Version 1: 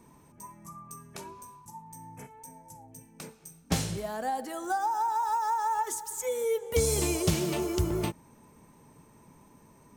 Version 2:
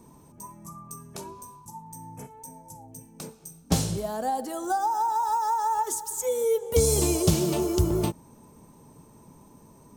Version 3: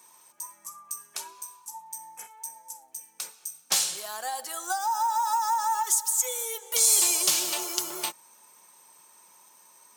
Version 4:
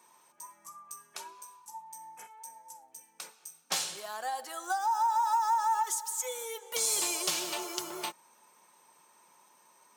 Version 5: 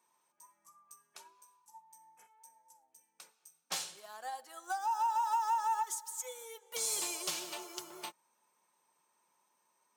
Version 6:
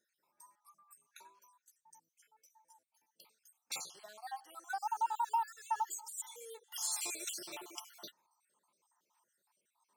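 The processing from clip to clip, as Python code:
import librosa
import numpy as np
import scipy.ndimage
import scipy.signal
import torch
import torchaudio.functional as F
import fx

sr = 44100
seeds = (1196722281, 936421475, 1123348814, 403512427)

y1 = fx.peak_eq(x, sr, hz=2000.0, db=-9.5, octaves=1.2)
y1 = y1 * 10.0 ** (5.0 / 20.0)
y2 = scipy.signal.sosfilt(scipy.signal.butter(2, 1500.0, 'highpass', fs=sr, output='sos'), y1)
y2 = y2 + 0.36 * np.pad(y2, (int(5.5 * sr / 1000.0), 0))[:len(y2)]
y2 = y2 * 10.0 ** (7.0 / 20.0)
y3 = fx.high_shelf(y2, sr, hz=4400.0, db=-11.0)
y3 = y3 * 10.0 ** (-1.0 / 20.0)
y4 = 10.0 ** (-19.0 / 20.0) * np.tanh(y3 / 10.0 ** (-19.0 / 20.0))
y4 = fx.upward_expand(y4, sr, threshold_db=-48.0, expansion=1.5)
y4 = y4 * 10.0 ** (-2.5 / 20.0)
y5 = fx.spec_dropout(y4, sr, seeds[0], share_pct=54)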